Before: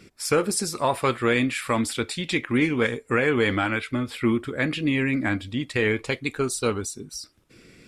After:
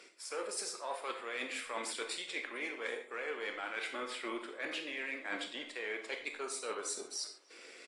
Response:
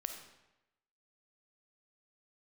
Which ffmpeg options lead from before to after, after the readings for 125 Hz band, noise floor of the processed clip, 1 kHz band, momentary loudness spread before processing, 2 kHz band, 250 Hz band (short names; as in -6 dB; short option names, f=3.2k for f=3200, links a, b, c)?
under -40 dB, -56 dBFS, -14.0 dB, 7 LU, -12.5 dB, -24.5 dB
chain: -filter_complex "[0:a]aeval=exprs='if(lt(val(0),0),0.708*val(0),val(0))':c=same,highpass=f=440:w=0.5412,highpass=f=440:w=1.3066,areverse,acompressor=threshold=-38dB:ratio=20,areverse,asplit=2[a][b];[b]adelay=290,highpass=300,lowpass=3.4k,asoftclip=type=hard:threshold=-37.5dB,volume=-19dB[c];[a][c]amix=inputs=2:normalize=0[d];[1:a]atrim=start_sample=2205,afade=t=out:st=0.3:d=0.01,atrim=end_sample=13671,asetrate=70560,aresample=44100[e];[d][e]afir=irnorm=-1:irlink=0,aresample=22050,aresample=44100,volume=7.5dB" -ar 44100 -c:a aac -b:a 48k